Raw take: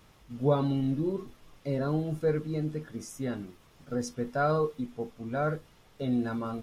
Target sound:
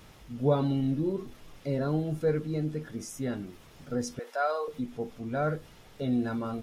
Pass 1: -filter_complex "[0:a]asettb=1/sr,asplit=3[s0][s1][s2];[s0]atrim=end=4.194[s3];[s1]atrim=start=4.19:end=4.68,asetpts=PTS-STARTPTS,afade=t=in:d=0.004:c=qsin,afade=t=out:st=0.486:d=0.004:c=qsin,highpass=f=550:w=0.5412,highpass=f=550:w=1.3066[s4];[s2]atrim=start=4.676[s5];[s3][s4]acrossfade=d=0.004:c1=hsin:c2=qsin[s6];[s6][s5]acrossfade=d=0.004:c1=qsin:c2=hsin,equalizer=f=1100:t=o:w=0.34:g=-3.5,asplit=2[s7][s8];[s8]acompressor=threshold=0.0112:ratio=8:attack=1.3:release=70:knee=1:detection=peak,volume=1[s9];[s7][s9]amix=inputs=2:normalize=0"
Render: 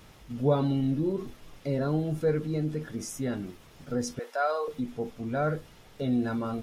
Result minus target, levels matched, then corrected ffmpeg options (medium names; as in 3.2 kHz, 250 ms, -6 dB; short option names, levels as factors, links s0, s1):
compression: peak gain reduction -10 dB
-filter_complex "[0:a]asettb=1/sr,asplit=3[s0][s1][s2];[s0]atrim=end=4.194[s3];[s1]atrim=start=4.19:end=4.68,asetpts=PTS-STARTPTS,afade=t=in:d=0.004:c=qsin,afade=t=out:st=0.486:d=0.004:c=qsin,highpass=f=550:w=0.5412,highpass=f=550:w=1.3066[s4];[s2]atrim=start=4.676[s5];[s3][s4]acrossfade=d=0.004:c1=hsin:c2=qsin[s6];[s6][s5]acrossfade=d=0.004:c1=qsin:c2=hsin,equalizer=f=1100:t=o:w=0.34:g=-3.5,asplit=2[s7][s8];[s8]acompressor=threshold=0.00299:ratio=8:attack=1.3:release=70:knee=1:detection=peak,volume=1[s9];[s7][s9]amix=inputs=2:normalize=0"